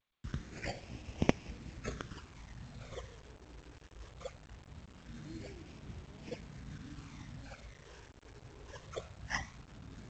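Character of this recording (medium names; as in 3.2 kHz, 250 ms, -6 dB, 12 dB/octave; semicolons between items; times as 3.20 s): aliases and images of a low sample rate 3.9 kHz, jitter 0%; phasing stages 12, 0.21 Hz, lowest notch 200–1400 Hz; a quantiser's noise floor 10-bit, dither none; G.722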